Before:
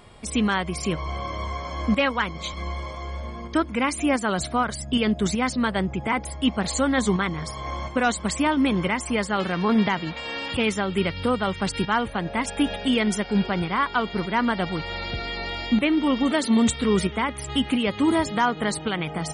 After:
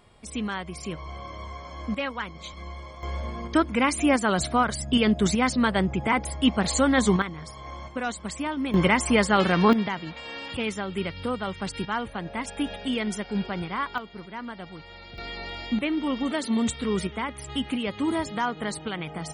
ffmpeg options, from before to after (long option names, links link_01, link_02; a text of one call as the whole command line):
ffmpeg -i in.wav -af "asetnsamples=nb_out_samples=441:pad=0,asendcmd='3.03 volume volume 1dB;7.22 volume volume -8dB;8.74 volume volume 4dB;9.73 volume volume -6dB;13.98 volume volume -14dB;15.18 volume volume -5.5dB',volume=-8dB" out.wav